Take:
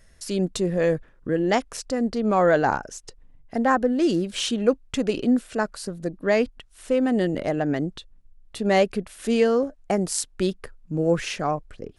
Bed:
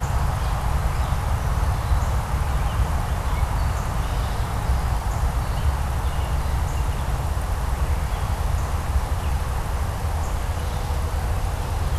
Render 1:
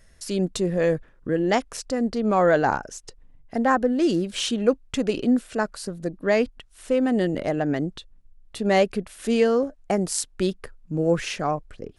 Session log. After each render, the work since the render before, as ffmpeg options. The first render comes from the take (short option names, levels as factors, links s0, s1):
-af anull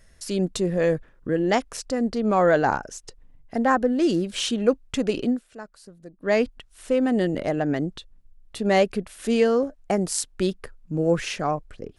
-filter_complex "[0:a]asplit=3[s0][s1][s2];[s0]atrim=end=5.4,asetpts=PTS-STARTPTS,afade=t=out:st=5.25:d=0.15:silence=0.188365[s3];[s1]atrim=start=5.4:end=6.18,asetpts=PTS-STARTPTS,volume=0.188[s4];[s2]atrim=start=6.18,asetpts=PTS-STARTPTS,afade=t=in:d=0.15:silence=0.188365[s5];[s3][s4][s5]concat=n=3:v=0:a=1"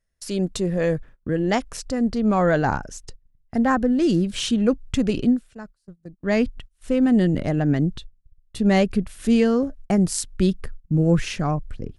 -af "agate=range=0.0708:threshold=0.00631:ratio=16:detection=peak,asubboost=boost=4:cutoff=230"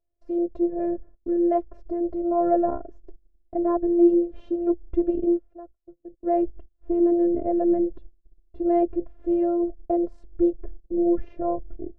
-af "afftfilt=real='hypot(re,im)*cos(PI*b)':imag='0':win_size=512:overlap=0.75,lowpass=f=540:t=q:w=5.2"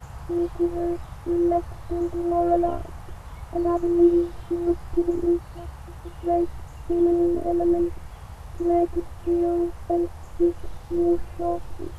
-filter_complex "[1:a]volume=0.158[s0];[0:a][s0]amix=inputs=2:normalize=0"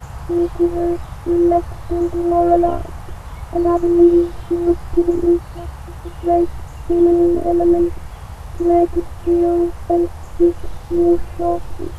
-af "volume=2.37,alimiter=limit=0.708:level=0:latency=1"